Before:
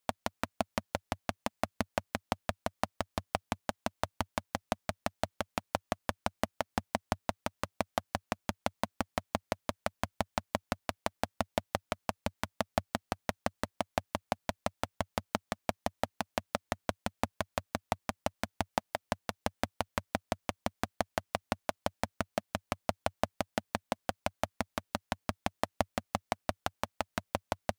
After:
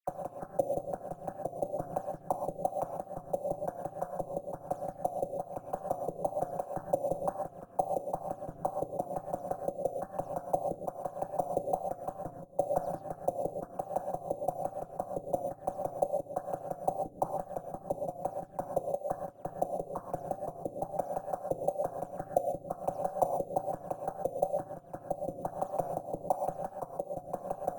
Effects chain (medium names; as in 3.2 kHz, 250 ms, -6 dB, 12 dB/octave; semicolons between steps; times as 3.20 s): delay that grows with frequency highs early, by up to 162 ms; de-hum 65.89 Hz, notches 25; gate -35 dBFS, range -39 dB; peaking EQ 650 Hz +11.5 dB 0.22 oct; ring modulator 86 Hz; LFO low-pass sine 1.1 Hz 450–3700 Hz; sample-rate reducer 17 kHz, jitter 0%; wow and flutter 46 cents; gated-style reverb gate 160 ms rising, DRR 4 dB; trim -2.5 dB